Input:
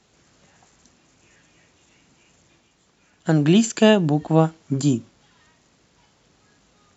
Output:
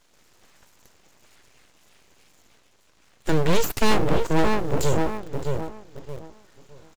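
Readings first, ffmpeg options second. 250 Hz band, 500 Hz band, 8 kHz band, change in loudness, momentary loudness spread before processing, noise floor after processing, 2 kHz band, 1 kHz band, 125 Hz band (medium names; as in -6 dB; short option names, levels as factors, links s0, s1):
-7.5 dB, -2.0 dB, no reading, -5.5 dB, 7 LU, -60 dBFS, 0.0 dB, +1.5 dB, -5.0 dB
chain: -filter_complex "[0:a]asplit=2[s0][s1];[s1]adelay=618,lowpass=f=1500:p=1,volume=0.531,asplit=2[s2][s3];[s3]adelay=618,lowpass=f=1500:p=1,volume=0.29,asplit=2[s4][s5];[s5]adelay=618,lowpass=f=1500:p=1,volume=0.29,asplit=2[s6][s7];[s7]adelay=618,lowpass=f=1500:p=1,volume=0.29[s8];[s0][s2][s4][s6][s8]amix=inputs=5:normalize=0,asplit=2[s9][s10];[s10]acrusher=bits=6:dc=4:mix=0:aa=0.000001,volume=0.266[s11];[s9][s11]amix=inputs=2:normalize=0,aeval=exprs='abs(val(0))':c=same,acontrast=83,volume=0.447"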